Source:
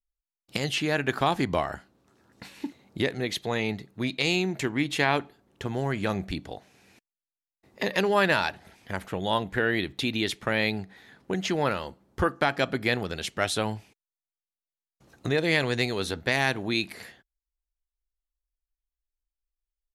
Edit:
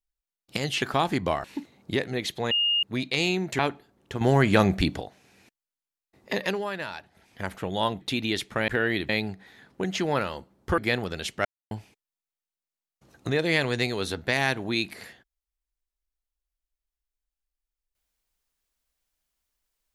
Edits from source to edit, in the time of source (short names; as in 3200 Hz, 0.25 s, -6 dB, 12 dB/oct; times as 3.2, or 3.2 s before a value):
0.82–1.09 cut
1.71–2.51 cut
3.58–3.9 bleep 2840 Hz -20.5 dBFS
4.66–5.09 cut
5.71–6.51 gain +8.5 dB
7.88–8.93 dip -11 dB, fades 0.31 s
9.51–9.92 move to 10.59
12.28–12.77 cut
13.44–13.7 mute